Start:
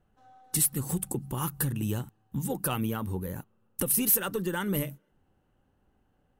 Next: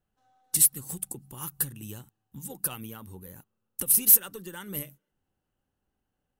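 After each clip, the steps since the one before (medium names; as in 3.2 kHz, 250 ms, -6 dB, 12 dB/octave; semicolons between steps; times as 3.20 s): treble shelf 2.6 kHz +10 dB; upward expansion 1.5:1, over -30 dBFS; trim -2.5 dB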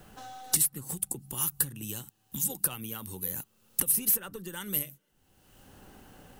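three bands compressed up and down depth 100%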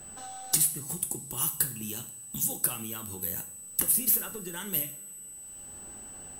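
whistle 8 kHz -46 dBFS; two-slope reverb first 0.46 s, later 3.9 s, from -22 dB, DRR 6 dB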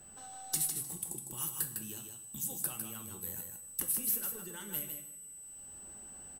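feedback delay 154 ms, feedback 18%, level -6 dB; trim -8.5 dB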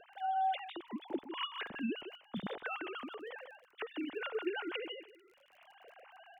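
formants replaced by sine waves; crackle 33 per s -54 dBFS; trim -1 dB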